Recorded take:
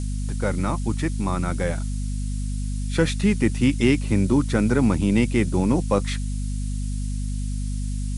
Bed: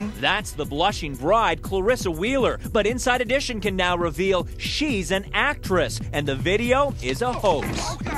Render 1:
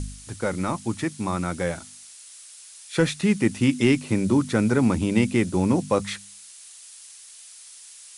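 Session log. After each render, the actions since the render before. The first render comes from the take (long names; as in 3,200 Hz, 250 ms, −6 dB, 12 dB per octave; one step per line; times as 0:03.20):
hum removal 50 Hz, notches 5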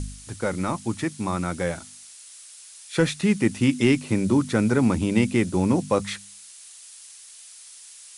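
no processing that can be heard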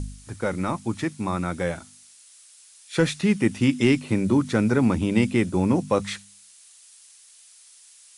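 noise reduction from a noise print 6 dB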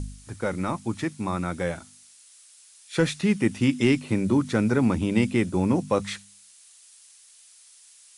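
level −1.5 dB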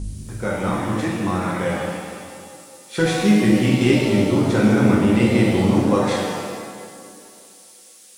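tape delay 215 ms, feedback 69%, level −10 dB, low-pass 1,200 Hz
reverb with rising layers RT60 1.6 s, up +7 semitones, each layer −8 dB, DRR −4 dB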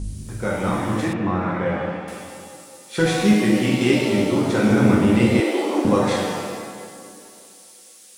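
0:01.13–0:02.08: low-pass filter 2,300 Hz
0:03.33–0:04.71: high-pass filter 190 Hz 6 dB per octave
0:05.40–0:05.85: elliptic high-pass filter 290 Hz, stop band 50 dB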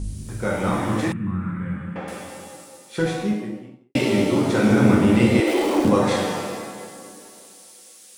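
0:01.12–0:01.96: drawn EQ curve 200 Hz 0 dB, 310 Hz −12 dB, 700 Hz −27 dB, 1,300 Hz −8 dB, 2,600 Hz −13 dB, 5,600 Hz −23 dB, 9,000 Hz +1 dB, 13,000 Hz −24 dB
0:02.51–0:03.95: fade out and dull
0:05.47–0:05.90: converter with a step at zero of −28 dBFS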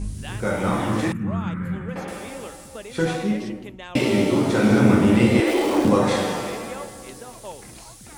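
mix in bed −17.5 dB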